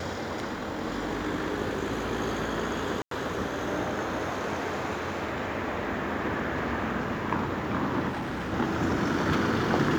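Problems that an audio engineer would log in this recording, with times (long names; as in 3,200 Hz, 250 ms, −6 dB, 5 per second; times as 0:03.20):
0:03.02–0:03.11: drop-out 93 ms
0:08.08–0:08.54: clipping −29.5 dBFS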